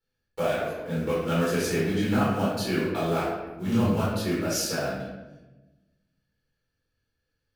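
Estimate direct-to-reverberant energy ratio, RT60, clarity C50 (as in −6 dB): −9.0 dB, 1.1 s, −0.5 dB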